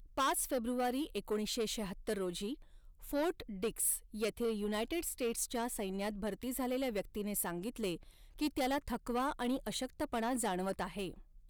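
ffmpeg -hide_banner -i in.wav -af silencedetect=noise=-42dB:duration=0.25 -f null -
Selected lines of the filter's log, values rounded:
silence_start: 2.54
silence_end: 3.03 | silence_duration: 0.49
silence_start: 7.96
silence_end: 8.39 | silence_duration: 0.43
silence_start: 11.14
silence_end: 11.49 | silence_duration: 0.35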